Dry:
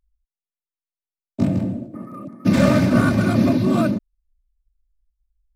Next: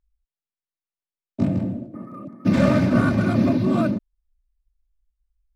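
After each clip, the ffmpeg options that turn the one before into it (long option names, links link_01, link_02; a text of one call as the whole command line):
ffmpeg -i in.wav -af "lowpass=frequency=3600:poles=1,volume=-2dB" out.wav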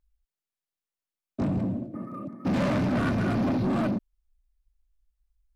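ffmpeg -i in.wav -af "asoftclip=type=tanh:threshold=-22.5dB" out.wav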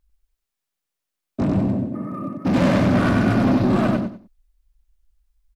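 ffmpeg -i in.wav -af "aecho=1:1:96|192|288:0.708|0.17|0.0408,volume=6dB" out.wav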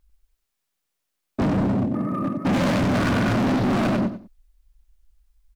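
ffmpeg -i in.wav -af "asoftclip=type=hard:threshold=-23dB,volume=4dB" out.wav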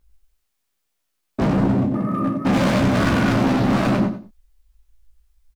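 ffmpeg -i in.wav -af "aecho=1:1:15|33:0.531|0.355,volume=1.5dB" out.wav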